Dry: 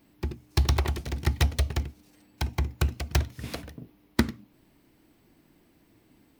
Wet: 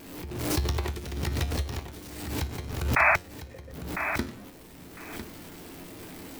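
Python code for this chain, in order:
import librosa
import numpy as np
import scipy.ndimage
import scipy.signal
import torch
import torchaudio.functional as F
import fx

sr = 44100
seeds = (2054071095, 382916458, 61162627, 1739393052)

p1 = x + 0.5 * 10.0 ** (-31.0 / 20.0) * np.sign(x)
p2 = fx.formant_cascade(p1, sr, vowel='e', at=(3.16, 3.73))
p3 = fx.peak_eq(p2, sr, hz=430.0, db=4.0, octaves=0.37)
p4 = fx.comb_fb(p3, sr, f0_hz=89.0, decay_s=0.31, harmonics='all', damping=0.0, mix_pct=70)
p5 = fx.spec_paint(p4, sr, seeds[0], shape='noise', start_s=2.96, length_s=0.2, low_hz=590.0, high_hz=2600.0, level_db=-17.0)
p6 = fx.tremolo_random(p5, sr, seeds[1], hz=2.0, depth_pct=55)
p7 = p6 + fx.echo_feedback(p6, sr, ms=1003, feedback_pct=16, wet_db=-9.5, dry=0)
y = fx.pre_swell(p7, sr, db_per_s=48.0)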